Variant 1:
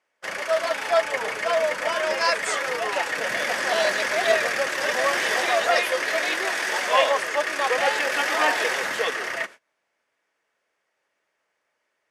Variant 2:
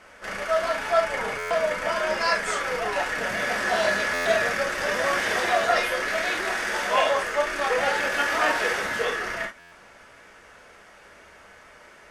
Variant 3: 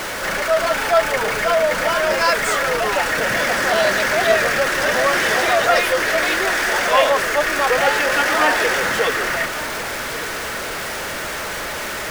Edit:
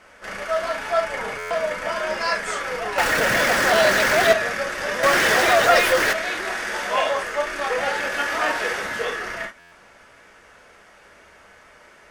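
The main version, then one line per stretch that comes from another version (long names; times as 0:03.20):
2
0:02.98–0:04.33: punch in from 3
0:05.03–0:06.13: punch in from 3
not used: 1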